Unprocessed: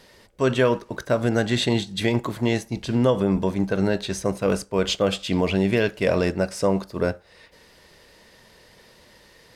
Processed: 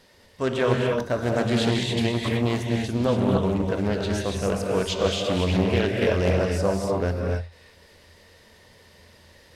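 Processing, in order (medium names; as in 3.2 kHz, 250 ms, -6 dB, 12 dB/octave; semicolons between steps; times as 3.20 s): peaking EQ 85 Hz +12.5 dB 0.24 oct; gated-style reverb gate 310 ms rising, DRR -1 dB; loudspeaker Doppler distortion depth 0.4 ms; trim -4.5 dB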